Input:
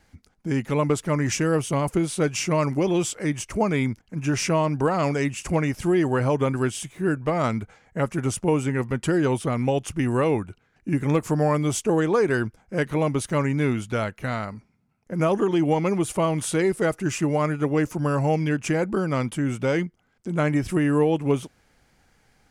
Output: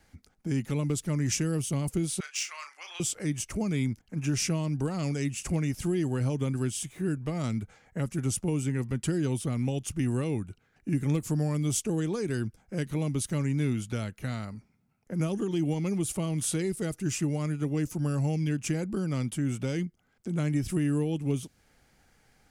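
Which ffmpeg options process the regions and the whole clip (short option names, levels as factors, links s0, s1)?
-filter_complex "[0:a]asettb=1/sr,asplit=3[s0][s1][s2];[s0]atrim=end=2.204[s3];[s1]atrim=start=2.2:end=3,asetpts=PTS-STARTPTS,afade=t=in:d=0.004:c=qsin,afade=t=out:st=0.796:d=0.004:c=qsin,highpass=f=1200:w=0.5412,highpass=f=1200:w=1.3066,adynamicsmooth=sensitivity=2:basefreq=6700,asplit=2[s4][s5];[s5]adelay=35,volume=0.398[s6];[s4][s6]amix=inputs=2:normalize=0,atrim=end_sample=35280[s7];[s2]atrim=start=2.996[s8];[s3][s7]acrossfade=d=0.004:c1=hsin:c2=qsin[s9];[s9][s8]acrossfade=d=0.004:c1=qsin:c2=hsin,highshelf=f=9700:g=5,bandreject=f=1000:w=17,acrossover=split=300|3000[s10][s11][s12];[s11]acompressor=threshold=0.00891:ratio=3[s13];[s10][s13][s12]amix=inputs=3:normalize=0,volume=0.75"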